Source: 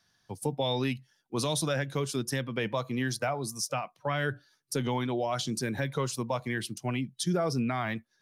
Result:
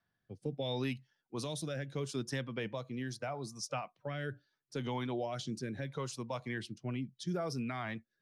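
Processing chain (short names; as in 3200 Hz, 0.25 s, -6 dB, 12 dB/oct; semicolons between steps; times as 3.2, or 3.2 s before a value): low-pass opened by the level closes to 2100 Hz, open at -24.5 dBFS; rotary speaker horn 0.75 Hz; gain -5.5 dB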